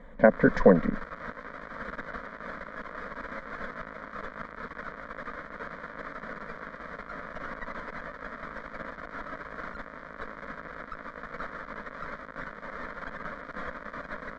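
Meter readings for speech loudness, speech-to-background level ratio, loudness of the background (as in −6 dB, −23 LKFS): −22.0 LKFS, 18.0 dB, −40.0 LKFS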